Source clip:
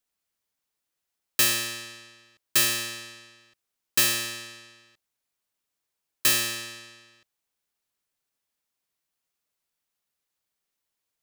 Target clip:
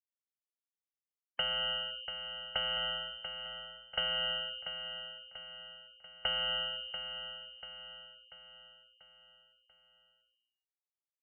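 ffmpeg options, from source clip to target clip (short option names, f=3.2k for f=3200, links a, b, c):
-filter_complex "[0:a]lowshelf=f=420:t=q:w=3:g=11,afftfilt=real='re*gte(hypot(re,im),0.0141)':imag='im*gte(hypot(re,im),0.0141)':win_size=1024:overlap=0.75,equalizer=f=210:t=o:w=0.23:g=-11,acompressor=threshold=-26dB:ratio=8,asplit=2[a][b];[b]aecho=0:1:689|1378|2067|2756|3445:0.355|0.17|0.0817|0.0392|0.0188[c];[a][c]amix=inputs=2:normalize=0,lowpass=f=2.7k:t=q:w=0.5098,lowpass=f=2.7k:t=q:w=0.6013,lowpass=f=2.7k:t=q:w=0.9,lowpass=f=2.7k:t=q:w=2.563,afreqshift=-3200"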